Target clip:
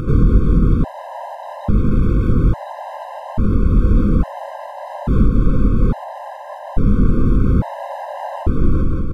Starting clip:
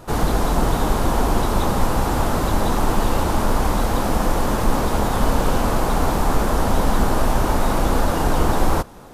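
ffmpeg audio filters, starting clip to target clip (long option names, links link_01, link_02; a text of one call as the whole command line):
ffmpeg -i in.wav -filter_complex "[0:a]flanger=delay=19:depth=6.1:speed=2.3,asettb=1/sr,asplit=3[link_01][link_02][link_03];[link_01]atrim=end=1.714[link_04];[link_02]atrim=start=1.71:end=2.3,asetpts=PTS-STARTPTS,afade=type=in:duration=0.004:curve=qsin,afade=type=out:start_time=0.586:duration=0.004:curve=qsin,asoftclip=type=hard:threshold=-25dB[link_05];[link_03]atrim=start=2.296[link_06];[link_04][link_05]acrossfade=duration=0.004:curve1=hsin:curve2=qsin[link_07];[link_07][link_06]acrossfade=duration=0.004:curve1=qsin:curve2=hsin,asettb=1/sr,asplit=3[link_08][link_09][link_10];[link_08]atrim=end=7.494[link_11];[link_09]atrim=start=7.49:end=8.43,asetpts=PTS-STARTPTS,afade=type=in:duration=0.004:curve=qsin,afade=type=out:start_time=0.936:duration=0.004:curve=qsin,highpass=frequency=49:width=0.5412,highpass=frequency=49:width=1.3066[link_12];[link_10]atrim=start=8.426[link_13];[link_11][link_12]acrossfade=duration=0.004:curve1=hsin:curve2=qsin[link_14];[link_14][link_13]acrossfade=duration=0.004:curve1=qsin:curve2=hsin,aecho=1:1:179|358|537|716|895:0.501|0.205|0.0842|0.0345|0.0142,alimiter=limit=-14.5dB:level=0:latency=1:release=430,asettb=1/sr,asplit=3[link_15][link_16][link_17];[link_15]atrim=end=4.984[link_18];[link_16]atrim=start=4.98:end=5.57,asetpts=PTS-STARTPTS,afade=type=in:duration=0.004:curve=qsin,afade=type=out:start_time=0.586:duration=0.004:curve=qsin,aeval=exprs='sgn(val(0))*max(abs(val(0))-0.00178,0)':channel_layout=same[link_19];[link_17]atrim=start=5.566[link_20];[link_18][link_19]acrossfade=duration=0.004:curve1=hsin:curve2=qsin[link_21];[link_21][link_20]acrossfade=duration=0.004:curve1=qsin:curve2=hsin,bass=frequency=250:gain=14,treble=frequency=4000:gain=-15,acompressor=mode=upward:threshold=-13dB:ratio=2.5,equalizer=frequency=280:width_type=o:width=2.8:gain=6,afftfilt=real='re*gt(sin(2*PI*0.59*pts/sr)*(1-2*mod(floor(b*sr/1024/530),2)),0)':imag='im*gt(sin(2*PI*0.59*pts/sr)*(1-2*mod(floor(b*sr/1024/530),2)),0)':win_size=1024:overlap=0.75,volume=-1dB" out.wav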